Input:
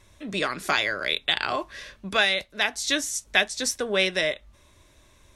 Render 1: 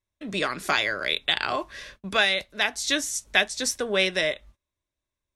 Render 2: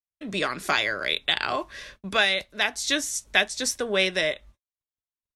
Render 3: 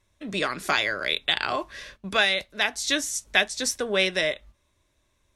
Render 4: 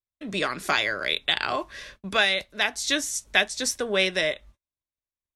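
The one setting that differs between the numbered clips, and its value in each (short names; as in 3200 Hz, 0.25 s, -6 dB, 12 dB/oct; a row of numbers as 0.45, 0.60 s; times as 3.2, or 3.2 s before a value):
gate, range: -31, -57, -13, -45 dB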